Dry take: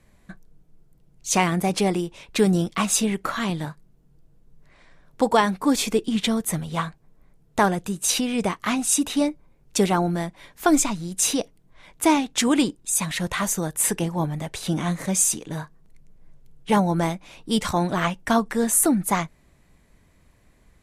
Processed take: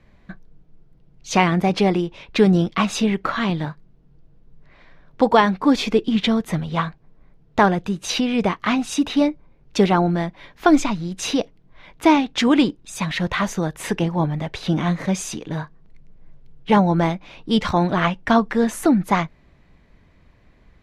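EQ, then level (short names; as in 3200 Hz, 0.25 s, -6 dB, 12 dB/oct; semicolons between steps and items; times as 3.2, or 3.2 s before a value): air absorption 270 m; high shelf 4200 Hz +10.5 dB; +4.5 dB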